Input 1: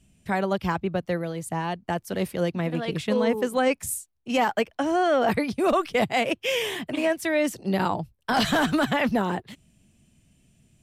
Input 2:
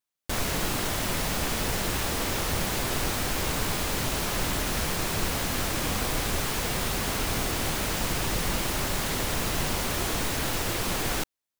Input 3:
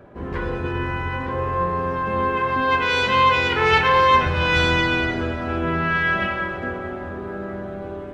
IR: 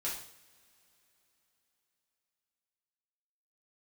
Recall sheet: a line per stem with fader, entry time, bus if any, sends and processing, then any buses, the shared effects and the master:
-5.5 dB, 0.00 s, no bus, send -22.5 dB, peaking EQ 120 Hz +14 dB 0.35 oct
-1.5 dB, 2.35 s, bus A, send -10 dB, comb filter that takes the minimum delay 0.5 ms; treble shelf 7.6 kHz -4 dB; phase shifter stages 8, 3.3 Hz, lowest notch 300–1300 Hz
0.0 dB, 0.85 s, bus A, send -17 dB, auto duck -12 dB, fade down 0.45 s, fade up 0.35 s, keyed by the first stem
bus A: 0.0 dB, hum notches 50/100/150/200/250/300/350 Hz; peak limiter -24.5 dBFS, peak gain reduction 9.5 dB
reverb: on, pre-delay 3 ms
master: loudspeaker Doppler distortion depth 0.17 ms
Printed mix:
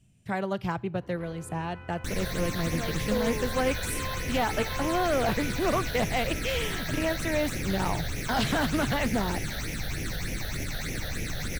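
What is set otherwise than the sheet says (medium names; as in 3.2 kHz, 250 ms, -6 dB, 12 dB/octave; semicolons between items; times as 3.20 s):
stem 2: entry 2.35 s -> 1.75 s; stem 3 0.0 dB -> -11.0 dB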